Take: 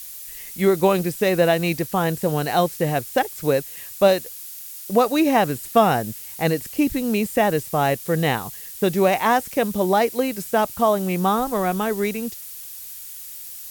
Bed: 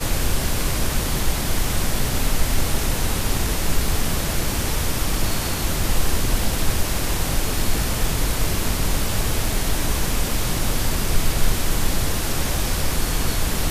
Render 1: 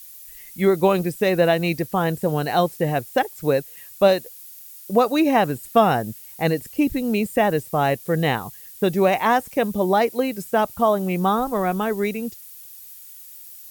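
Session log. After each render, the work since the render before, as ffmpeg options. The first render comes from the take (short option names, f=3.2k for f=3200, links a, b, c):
-af "afftdn=nr=8:nf=-37"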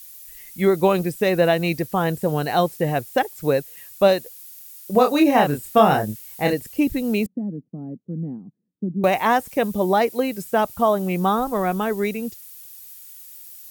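-filter_complex "[0:a]asettb=1/sr,asplit=3[a][b][c];[a]atrim=end=4.924[d];[b]atrim=start=4.92:end=6.53,asetpts=PTS-STARTPTS,afade=t=in:d=0.004:c=qsin,afade=t=out:st=1.606:d=0.004:c=qsin,asplit=2[e][f];[f]adelay=28,volume=-4dB[g];[e][g]amix=inputs=2:normalize=0,atrim=end_sample=71001[h];[c]atrim=start=6.526[i];[d][h]acrossfade=d=0.004:c1=hsin:c2=qsin[j];[j][i]acrossfade=d=0.004:c1=qsin:c2=hsin,asettb=1/sr,asplit=3[k][l][m];[k]atrim=end=7.264[n];[l]atrim=start=7.26:end=9.04,asetpts=PTS-STARTPTS,afade=t=in:d=0.004:c=qsin,afade=t=out:st=1.776:d=0.004:c=qsin,asuperpass=centerf=220:order=4:qfactor=1.9[o];[m]atrim=start=9.036[p];[n][o]acrossfade=d=0.004:c1=hsin:c2=qsin[q];[q][p]acrossfade=d=0.004:c1=qsin:c2=hsin"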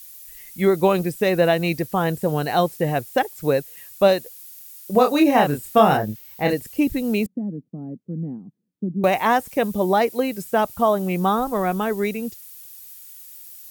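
-filter_complex "[0:a]asettb=1/sr,asplit=3[a][b][c];[a]atrim=end=5.974[d];[b]atrim=start=5.97:end=6.5,asetpts=PTS-STARTPTS,afade=t=in:d=0.004:c=qsin,afade=t=out:st=0.526:d=0.004:c=qsin,equalizer=f=9.5k:w=1.2:g=-13[e];[c]atrim=start=6.496[f];[d][e]acrossfade=d=0.004:c1=hsin:c2=qsin[g];[g][f]acrossfade=d=0.004:c1=qsin:c2=hsin"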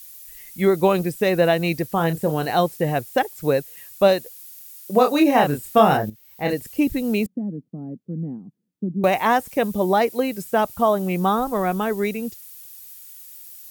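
-filter_complex "[0:a]asettb=1/sr,asplit=3[a][b][c];[a]atrim=end=1.954[d];[b]atrim=start=1.95:end=2.5,asetpts=PTS-STARTPTS,afade=t=in:d=0.004:c=qsin,afade=t=out:st=0.546:d=0.004:c=qsin,asplit=2[e][f];[f]adelay=30,volume=-11dB[g];[e][g]amix=inputs=2:normalize=0,atrim=end_sample=24255[h];[c]atrim=start=2.496[i];[d][h]acrossfade=d=0.004:c1=hsin:c2=qsin[j];[j][i]acrossfade=d=0.004:c1=qsin:c2=hsin,asettb=1/sr,asplit=3[k][l][m];[k]atrim=end=4.804[n];[l]atrim=start=4.8:end=5.44,asetpts=PTS-STARTPTS,afade=t=in:d=0.004:c=qsin,afade=t=out:st=0.636:d=0.004:c=qsin,highpass=160[o];[m]atrim=start=5.436[p];[n][o]acrossfade=d=0.004:c1=hsin:c2=qsin[q];[q][p]acrossfade=d=0.004:c1=qsin:c2=hsin,asplit=2[r][s];[r]atrim=end=6.1,asetpts=PTS-STARTPTS,afade=t=out:st=6.096:d=0.004:c=hsin:silence=0.211349[t];[s]atrim=start=6.1,asetpts=PTS-STARTPTS,afade=t=in:d=0.55:silence=0.211349[u];[t][u]concat=n=2:v=0:a=1"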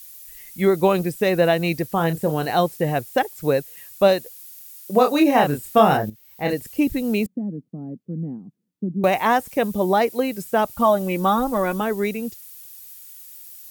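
-filter_complex "[0:a]asettb=1/sr,asplit=3[a][b][c];[a]atrim=end=10.774[d];[b]atrim=start=10.77:end=11.81,asetpts=PTS-STARTPTS,afade=t=in:d=0.004:c=qsin,afade=t=out:st=1.036:d=0.004:c=qsin,aecho=1:1:3.5:0.65,atrim=end_sample=45864[e];[c]atrim=start=11.806[f];[d][e]acrossfade=d=0.004:c1=hsin:c2=qsin[g];[g][f]acrossfade=d=0.004:c1=qsin:c2=hsin"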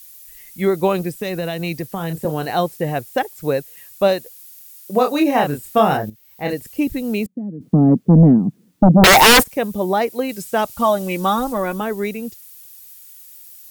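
-filter_complex "[0:a]asettb=1/sr,asplit=3[a][b][c];[a]atrim=end=1.214[d];[b]atrim=start=1.21:end=2.25,asetpts=PTS-STARTPTS,afade=t=in:d=0.004:c=qsin,afade=t=out:st=1.036:d=0.004:c=qsin,acrossover=split=180|3000[e][f][g];[f]acompressor=threshold=-22dB:ratio=6:attack=3.2:release=140:knee=2.83:detection=peak[h];[e][h][g]amix=inputs=3:normalize=0[i];[c]atrim=start=2.246[j];[d][i]acrossfade=d=0.004:c1=hsin:c2=qsin[k];[k][j]acrossfade=d=0.004:c1=qsin:c2=hsin,asplit=3[l][m][n];[l]afade=t=out:st=7.6:d=0.02[o];[m]aeval=exprs='0.531*sin(PI/2*7.94*val(0)/0.531)':c=same,afade=t=in:st=7.6:d=0.02,afade=t=out:st=9.42:d=0.02[p];[n]afade=t=in:st=9.42:d=0.02[q];[o][p][q]amix=inputs=3:normalize=0,asettb=1/sr,asplit=3[r][s][t];[r]atrim=end=10.294[u];[s]atrim=start=10.29:end=11.53,asetpts=PTS-STARTPTS,afade=t=in:d=0.004:c=qsin,afade=t=out:st=1.236:d=0.004:c=qsin,equalizer=f=5.7k:t=o:w=2.7:g=6[v];[t]atrim=start=11.526[w];[u][v]acrossfade=d=0.004:c1=hsin:c2=qsin[x];[x][w]acrossfade=d=0.004:c1=qsin:c2=hsin"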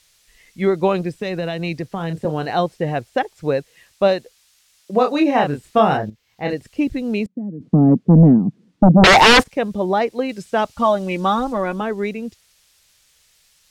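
-af "lowpass=4.9k"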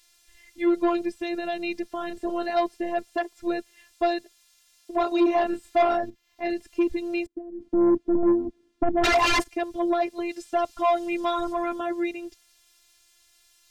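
-af "afftfilt=real='hypot(re,im)*cos(PI*b)':imag='0':win_size=512:overlap=0.75,asoftclip=type=tanh:threshold=-14dB"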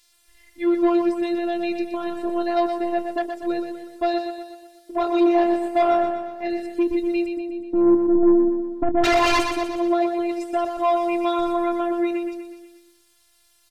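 -filter_complex "[0:a]asplit=2[a][b];[b]adelay=23,volume=-13.5dB[c];[a][c]amix=inputs=2:normalize=0,asplit=2[d][e];[e]aecho=0:1:122|244|366|488|610|732|854:0.447|0.241|0.13|0.0703|0.038|0.0205|0.0111[f];[d][f]amix=inputs=2:normalize=0"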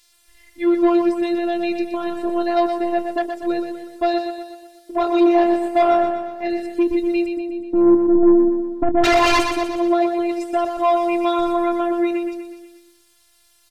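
-af "volume=3dB"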